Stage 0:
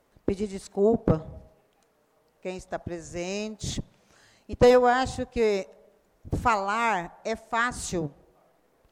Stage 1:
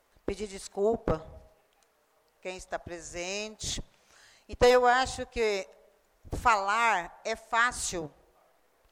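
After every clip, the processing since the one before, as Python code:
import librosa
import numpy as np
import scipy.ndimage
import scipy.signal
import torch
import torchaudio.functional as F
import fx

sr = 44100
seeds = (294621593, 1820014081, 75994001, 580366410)

y = fx.peak_eq(x, sr, hz=170.0, db=-13.0, octaves=2.9)
y = y * 10.0 ** (2.0 / 20.0)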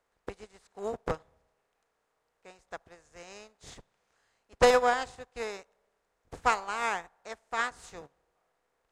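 y = fx.bin_compress(x, sr, power=0.6)
y = fx.upward_expand(y, sr, threshold_db=-37.0, expansion=2.5)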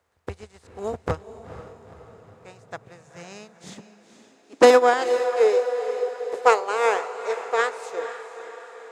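y = fx.echo_diffused(x, sr, ms=475, feedback_pct=54, wet_db=-11.5)
y = fx.filter_sweep_highpass(y, sr, from_hz=81.0, to_hz=450.0, start_s=1.98, end_s=5.54, q=6.0)
y = y * 10.0 ** (5.0 / 20.0)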